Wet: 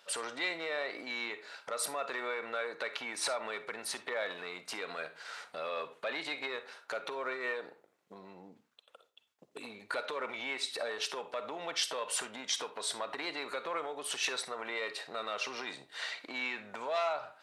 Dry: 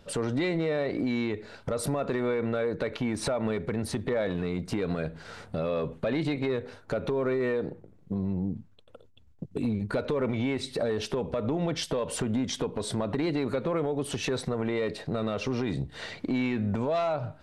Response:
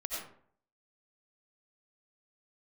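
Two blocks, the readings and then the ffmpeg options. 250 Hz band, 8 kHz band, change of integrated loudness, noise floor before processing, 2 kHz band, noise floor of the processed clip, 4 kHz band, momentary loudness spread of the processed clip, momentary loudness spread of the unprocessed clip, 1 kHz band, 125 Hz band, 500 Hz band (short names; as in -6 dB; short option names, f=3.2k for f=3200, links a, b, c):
-21.0 dB, +1.5 dB, -6.5 dB, -55 dBFS, +1.5 dB, -73 dBFS, +1.5 dB, 8 LU, 6 LU, -2.0 dB, -31.5 dB, -10.0 dB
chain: -filter_complex "[0:a]highpass=980,asplit=2[a][b];[1:a]atrim=start_sample=2205,asetrate=88200,aresample=44100[c];[b][c]afir=irnorm=-1:irlink=0,volume=-6dB[d];[a][d]amix=inputs=2:normalize=0"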